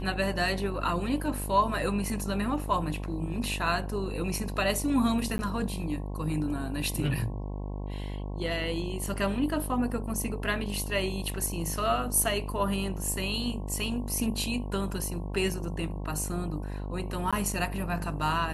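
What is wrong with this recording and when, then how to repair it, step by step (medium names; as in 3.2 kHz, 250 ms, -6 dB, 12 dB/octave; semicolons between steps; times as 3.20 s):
buzz 50 Hz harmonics 22 -35 dBFS
5.38–5.39 s: dropout 10 ms
17.31–17.33 s: dropout 16 ms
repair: de-hum 50 Hz, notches 22; interpolate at 5.38 s, 10 ms; interpolate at 17.31 s, 16 ms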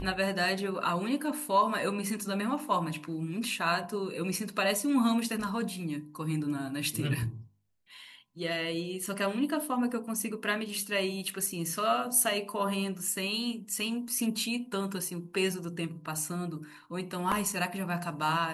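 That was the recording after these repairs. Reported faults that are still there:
nothing left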